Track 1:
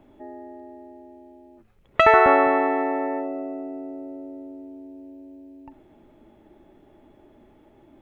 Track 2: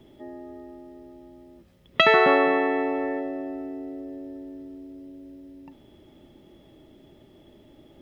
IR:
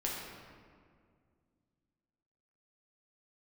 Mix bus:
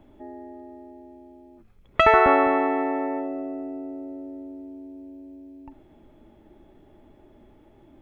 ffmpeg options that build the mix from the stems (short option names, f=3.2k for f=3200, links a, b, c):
-filter_complex "[0:a]lowshelf=f=110:g=7.5,volume=-1.5dB[a];[1:a]volume=-16.5dB[b];[a][b]amix=inputs=2:normalize=0"